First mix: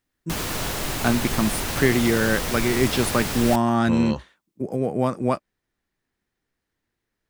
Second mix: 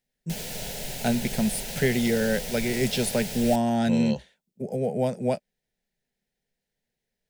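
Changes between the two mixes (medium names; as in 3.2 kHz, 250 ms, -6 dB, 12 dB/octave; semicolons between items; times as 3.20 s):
background -5.0 dB; master: add static phaser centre 310 Hz, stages 6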